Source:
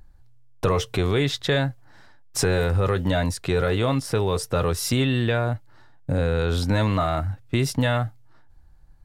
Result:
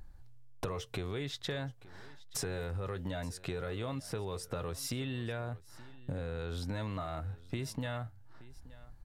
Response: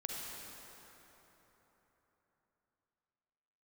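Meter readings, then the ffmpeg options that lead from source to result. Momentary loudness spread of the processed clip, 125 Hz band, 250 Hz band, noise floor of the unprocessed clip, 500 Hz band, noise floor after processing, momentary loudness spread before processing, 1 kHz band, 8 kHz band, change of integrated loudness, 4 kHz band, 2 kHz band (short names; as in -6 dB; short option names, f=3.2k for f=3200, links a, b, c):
16 LU, -15.5 dB, -15.5 dB, -49 dBFS, -16.0 dB, -55 dBFS, 6 LU, -16.0 dB, -12.0 dB, -15.5 dB, -14.0 dB, -16.0 dB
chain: -filter_complex "[0:a]acompressor=threshold=-37dB:ratio=4,asplit=2[a][b];[b]aecho=0:1:875:0.1[c];[a][c]amix=inputs=2:normalize=0,volume=-1dB"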